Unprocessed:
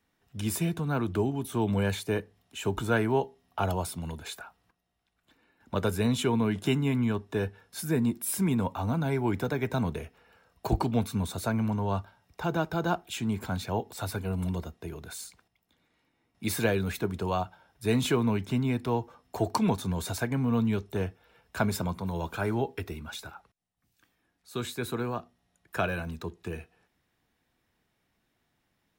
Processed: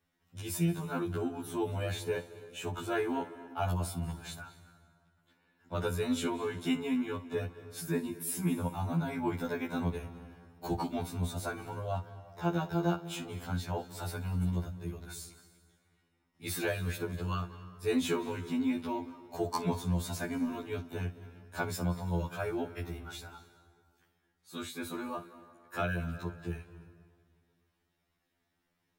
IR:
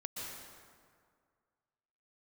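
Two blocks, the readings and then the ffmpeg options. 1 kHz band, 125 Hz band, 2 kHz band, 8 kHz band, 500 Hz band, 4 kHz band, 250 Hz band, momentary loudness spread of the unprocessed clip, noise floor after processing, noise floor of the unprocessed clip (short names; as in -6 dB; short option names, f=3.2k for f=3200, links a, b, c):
-5.0 dB, -5.5 dB, -4.5 dB, -4.5 dB, -5.0 dB, -5.0 dB, -5.0 dB, 13 LU, -79 dBFS, -76 dBFS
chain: -filter_complex "[0:a]asplit=2[a][b];[1:a]atrim=start_sample=2205,adelay=56[c];[b][c]afir=irnorm=-1:irlink=0,volume=-12.5dB[d];[a][d]amix=inputs=2:normalize=0,afftfilt=real='re*2*eq(mod(b,4),0)':imag='im*2*eq(mod(b,4),0)':win_size=2048:overlap=0.75,volume=-2.5dB"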